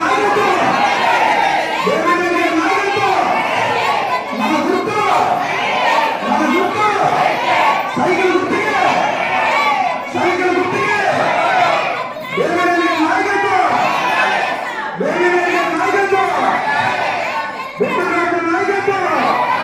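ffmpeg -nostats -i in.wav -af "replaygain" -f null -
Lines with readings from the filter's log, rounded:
track_gain = -2.8 dB
track_peak = 0.518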